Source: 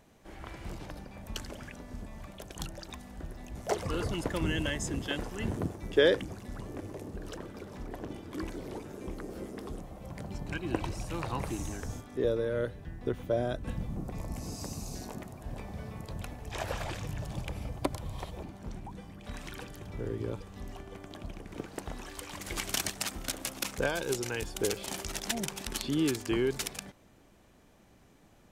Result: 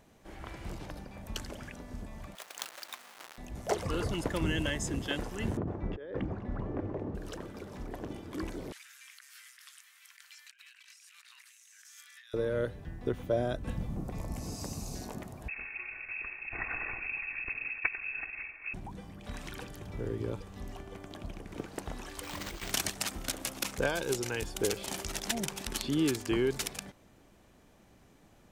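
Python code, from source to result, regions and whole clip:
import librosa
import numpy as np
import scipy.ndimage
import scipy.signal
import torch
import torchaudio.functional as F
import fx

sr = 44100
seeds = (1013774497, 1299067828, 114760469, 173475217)

y = fx.chain(x, sr, fx.halfwave_hold(),
    fx.highpass(hz=1000.0, slope=12), at=(2.35, 3.38))
y = fx.chain(y, sr, fx.lowpass(hz=1500.0, slope=12),
    fx.over_compress(threshold_db=-35.0, ratio=-1.0), at=(5.57, 7.15))
y = fx.chain(y, sr, fx.steep_highpass(hz=1600.0, slope=36),
    fx.over_compress(threshold_db=-56.0, ratio=-1.0), at=(8.72, 12.34))
y = fx.chain(y, sr, fx.lower_of_two(delay_ms=2.7),
    fx.freq_invert(carrier_hz=2600),
    fx.low_shelf(hz=67.0, db=9.5), at=(15.48, 18.74))
y = fx.chain(y, sr, fx.resample_bad(factor=4, down='none', up='hold'),
    fx.over_compress(threshold_db=-39.0, ratio=-0.5),
    fx.doubler(ms=24.0, db=-12), at=(22.23, 22.71))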